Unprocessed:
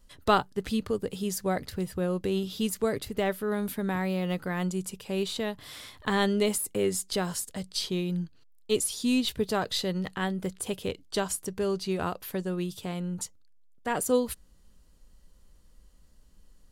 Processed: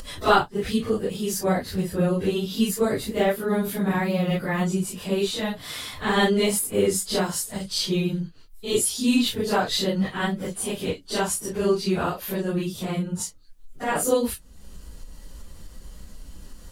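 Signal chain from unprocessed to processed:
random phases in long frames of 100 ms
upward compression, threshold −32 dBFS
level +5.5 dB

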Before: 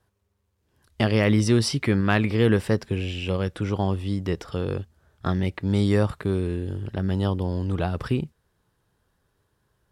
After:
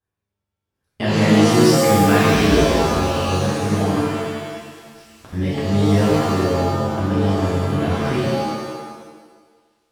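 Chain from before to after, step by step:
0:02.34–0:02.95: frequency shifter −46 Hz
0:03.94–0:05.33: gate with flip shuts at −28 dBFS, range −30 dB
delay with a high-pass on its return 473 ms, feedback 83%, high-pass 2,600 Hz, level −19.5 dB
noise gate −57 dBFS, range −15 dB
reverb with rising layers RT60 1.3 s, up +7 semitones, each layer −2 dB, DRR −7.5 dB
level −4.5 dB

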